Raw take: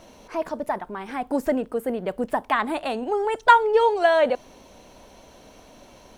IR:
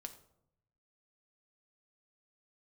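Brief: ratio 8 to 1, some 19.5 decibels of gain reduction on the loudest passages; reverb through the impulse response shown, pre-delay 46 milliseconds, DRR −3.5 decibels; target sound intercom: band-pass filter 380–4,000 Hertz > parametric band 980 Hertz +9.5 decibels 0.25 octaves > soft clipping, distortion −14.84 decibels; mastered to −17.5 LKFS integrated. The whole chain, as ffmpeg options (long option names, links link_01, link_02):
-filter_complex "[0:a]acompressor=threshold=-29dB:ratio=8,asplit=2[link_01][link_02];[1:a]atrim=start_sample=2205,adelay=46[link_03];[link_02][link_03]afir=irnorm=-1:irlink=0,volume=8dB[link_04];[link_01][link_04]amix=inputs=2:normalize=0,highpass=380,lowpass=4000,equalizer=frequency=980:width_type=o:width=0.25:gain=9.5,asoftclip=threshold=-18dB,volume=11.5dB"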